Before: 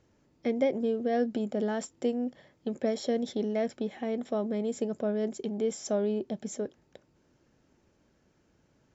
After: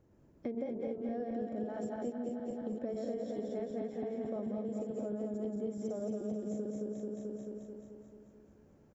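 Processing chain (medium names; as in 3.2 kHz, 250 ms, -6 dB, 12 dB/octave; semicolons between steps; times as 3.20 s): backward echo that repeats 109 ms, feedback 78%, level -2.5 dB; peaking EQ 4 kHz -14.5 dB 3 oct; delay 232 ms -7.5 dB; compression 4:1, threshold -38 dBFS, peak gain reduction 15.5 dB; trim +1 dB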